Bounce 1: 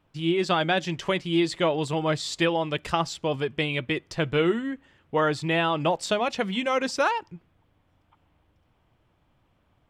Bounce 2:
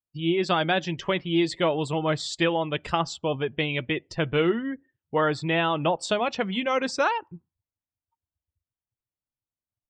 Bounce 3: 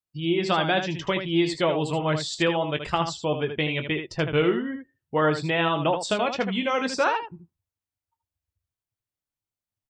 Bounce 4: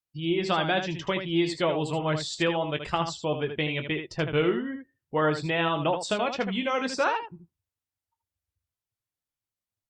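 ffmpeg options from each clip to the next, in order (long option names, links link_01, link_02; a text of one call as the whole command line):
ffmpeg -i in.wav -af "afftdn=noise_reduction=35:noise_floor=-44" out.wav
ffmpeg -i in.wav -af "aecho=1:1:20|78:0.282|0.398" out.wav
ffmpeg -i in.wav -af "volume=-2.5dB" -ar 48000 -c:a libopus -b:a 64k out.opus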